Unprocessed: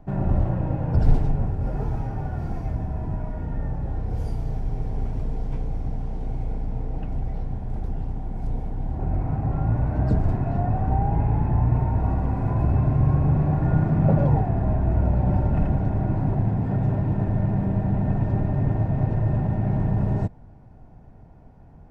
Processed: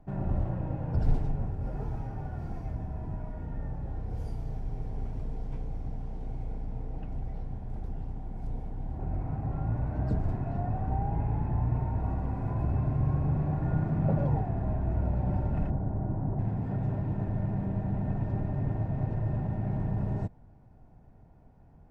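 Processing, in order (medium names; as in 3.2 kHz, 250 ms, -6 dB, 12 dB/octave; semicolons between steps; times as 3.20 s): 15.70–16.39 s: low-pass 1.2 kHz 12 dB/octave; trim -8 dB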